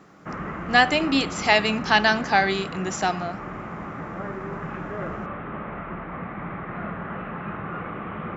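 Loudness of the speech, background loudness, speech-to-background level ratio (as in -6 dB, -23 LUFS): -21.5 LUFS, -33.5 LUFS, 12.0 dB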